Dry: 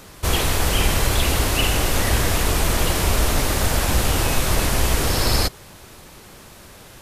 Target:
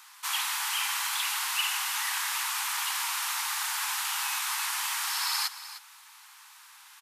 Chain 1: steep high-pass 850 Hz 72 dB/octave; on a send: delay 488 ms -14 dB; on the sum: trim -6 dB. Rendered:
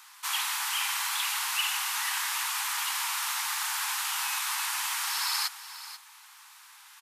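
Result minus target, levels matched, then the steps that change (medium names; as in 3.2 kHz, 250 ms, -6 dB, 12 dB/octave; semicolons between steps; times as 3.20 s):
echo 183 ms late
change: delay 305 ms -14 dB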